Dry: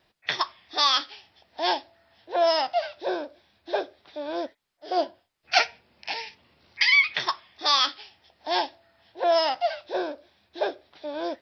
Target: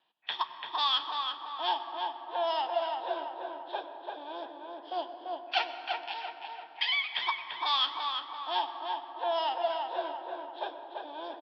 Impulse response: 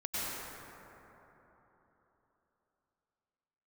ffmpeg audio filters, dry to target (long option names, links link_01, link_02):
-filter_complex "[0:a]highpass=390,equalizer=frequency=400:width_type=q:width=4:gain=-8,equalizer=frequency=580:width_type=q:width=4:gain=-8,equalizer=frequency=920:width_type=q:width=4:gain=7,equalizer=frequency=1400:width_type=q:width=4:gain=-3,equalizer=frequency=2100:width_type=q:width=4:gain=-9,equalizer=frequency=3200:width_type=q:width=4:gain=8,lowpass=frequency=3600:width=0.5412,lowpass=frequency=3600:width=1.3066,asplit=2[link_01][link_02];[link_02]adelay=340,lowpass=frequency=2300:poles=1,volume=-3dB,asplit=2[link_03][link_04];[link_04]adelay=340,lowpass=frequency=2300:poles=1,volume=0.51,asplit=2[link_05][link_06];[link_06]adelay=340,lowpass=frequency=2300:poles=1,volume=0.51,asplit=2[link_07][link_08];[link_08]adelay=340,lowpass=frequency=2300:poles=1,volume=0.51,asplit=2[link_09][link_10];[link_10]adelay=340,lowpass=frequency=2300:poles=1,volume=0.51,asplit=2[link_11][link_12];[link_12]adelay=340,lowpass=frequency=2300:poles=1,volume=0.51,asplit=2[link_13][link_14];[link_14]adelay=340,lowpass=frequency=2300:poles=1,volume=0.51[link_15];[link_01][link_03][link_05][link_07][link_09][link_11][link_13][link_15]amix=inputs=8:normalize=0,asplit=2[link_16][link_17];[1:a]atrim=start_sample=2205,lowshelf=frequency=320:gain=11[link_18];[link_17][link_18]afir=irnorm=-1:irlink=0,volume=-16dB[link_19];[link_16][link_19]amix=inputs=2:normalize=0,volume=-8dB"